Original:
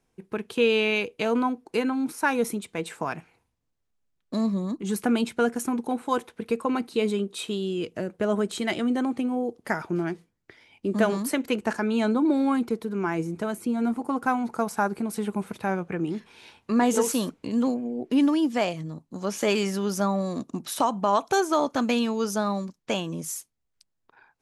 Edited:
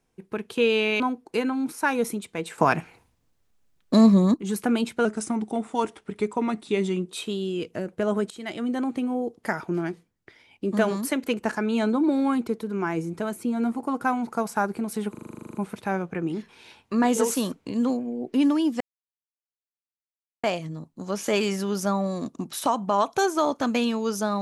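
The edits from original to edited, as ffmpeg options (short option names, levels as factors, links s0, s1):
-filter_complex "[0:a]asplit=19[s0][s1][s2][s3][s4][s5][s6][s7][s8][s9][s10][s11][s12][s13][s14][s15][s16][s17][s18];[s0]atrim=end=1.002[s19];[s1]atrim=start=1.398:end=2.982[s20];[s2]atrim=start=2.978:end=4.742,asetpts=PTS-STARTPTS,volume=3.16[s21];[s3]atrim=start=4.738:end=5.454[s22];[s4]atrim=start=5.45:end=7.32,asetpts=PTS-STARTPTS,asetrate=40131,aresample=44100,atrim=end_sample=90623,asetpts=PTS-STARTPTS[s23];[s5]atrim=start=7.316:end=8.52,asetpts=PTS-STARTPTS,afade=t=out:st=1.2:d=0.004:c=hsin:silence=0.177828[s24];[s6]atrim=start=8.52:end=15.362,asetpts=PTS-STARTPTS,afade=t=in:d=0.77:c=qsin:silence=0.177828[s25];[s7]atrim=start=15.318:end=15.362[s26];[s8]atrim=start=15.318:end=15.362[s27];[s9]atrim=start=15.318:end=15.362[s28];[s10]atrim=start=15.318:end=15.362[s29];[s11]atrim=start=15.318:end=15.362[s30];[s12]atrim=start=15.318:end=15.362[s31];[s13]atrim=start=15.318:end=15.362[s32];[s14]atrim=start=15.318:end=15.362[s33];[s15]atrim=start=15.318:end=15.362[s34];[s16]atrim=start=15.318:end=15.362[s35];[s17]atrim=start=15.318:end=18.58,asetpts=PTS-STARTPTS,afade=t=out:st=3.258:d=0.004:c=hsin,apad=pad_dur=1.63[s36];[s18]atrim=start=18.58,asetpts=PTS-STARTPTS,afade=t=in:d=0.004:c=hsin[s37];[s19][s20]acrossfade=d=0.004:c1=hsin:c2=hsin[s38];[s38][s21]acrossfade=d=0.004:c1=hsin:c2=hsin[s39];[s39][s22]acrossfade=d=0.004:c1=hsin:c2=hsin[s40];[s40][s23]acrossfade=d=0.004:c1=hsin:c2=hsin[s41];[s24][s25]concat=n=2:v=0:a=1[s42];[s41][s42]acrossfade=d=0.004:c1=hsin:c2=hsin[s43];[s43][s26]acrossfade=d=0.004:c1=hsin:c2=hsin[s44];[s44][s27]acrossfade=d=0.004:c1=hsin:c2=hsin[s45];[s45][s28]acrossfade=d=0.004:c1=hsin:c2=hsin[s46];[s46][s29]acrossfade=d=0.004:c1=hsin:c2=hsin[s47];[s47][s30]acrossfade=d=0.004:c1=hsin:c2=hsin[s48];[s48][s31]acrossfade=d=0.004:c1=hsin:c2=hsin[s49];[s49][s32]acrossfade=d=0.004:c1=hsin:c2=hsin[s50];[s50][s33]acrossfade=d=0.004:c1=hsin:c2=hsin[s51];[s51][s34]acrossfade=d=0.004:c1=hsin:c2=hsin[s52];[s52][s35]acrossfade=d=0.004:c1=hsin:c2=hsin[s53];[s36][s37]concat=n=2:v=0:a=1[s54];[s53][s54]acrossfade=d=0.004:c1=hsin:c2=hsin"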